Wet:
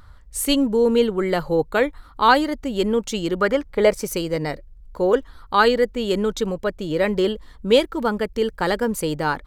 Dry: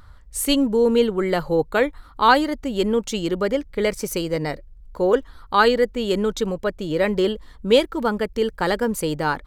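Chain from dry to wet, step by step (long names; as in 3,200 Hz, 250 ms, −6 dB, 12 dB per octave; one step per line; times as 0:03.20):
0:03.38–0:03.96: parametric band 1,700 Hz → 590 Hz +9.5 dB 1.3 octaves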